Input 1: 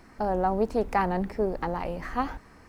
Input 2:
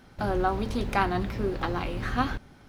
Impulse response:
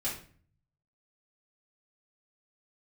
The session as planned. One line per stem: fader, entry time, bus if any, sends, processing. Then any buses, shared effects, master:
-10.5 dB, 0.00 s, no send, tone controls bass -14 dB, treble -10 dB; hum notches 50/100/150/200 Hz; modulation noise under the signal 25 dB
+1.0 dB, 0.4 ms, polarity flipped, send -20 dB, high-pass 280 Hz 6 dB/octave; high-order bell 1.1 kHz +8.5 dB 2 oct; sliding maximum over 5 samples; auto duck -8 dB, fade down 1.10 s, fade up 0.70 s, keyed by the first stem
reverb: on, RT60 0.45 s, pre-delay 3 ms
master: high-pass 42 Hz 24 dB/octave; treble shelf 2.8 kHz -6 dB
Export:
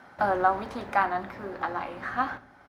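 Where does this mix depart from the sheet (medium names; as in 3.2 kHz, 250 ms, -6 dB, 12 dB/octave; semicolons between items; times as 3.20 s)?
stem 1 -10.5 dB -> -21.0 dB; stem 2: missing sliding maximum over 5 samples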